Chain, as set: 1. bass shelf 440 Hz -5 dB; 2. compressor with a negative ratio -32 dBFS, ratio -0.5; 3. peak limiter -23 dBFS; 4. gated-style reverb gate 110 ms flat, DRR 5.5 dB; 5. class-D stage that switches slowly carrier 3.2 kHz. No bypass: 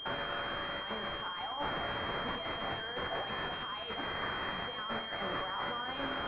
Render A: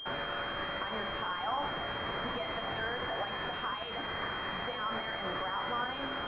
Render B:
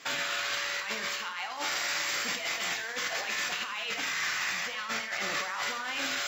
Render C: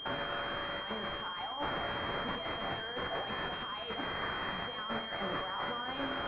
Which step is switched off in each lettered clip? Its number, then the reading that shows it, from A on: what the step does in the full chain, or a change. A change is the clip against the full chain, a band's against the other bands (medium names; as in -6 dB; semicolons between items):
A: 2, loudness change +1.5 LU; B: 5, 2 kHz band +10.0 dB; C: 1, 250 Hz band +1.5 dB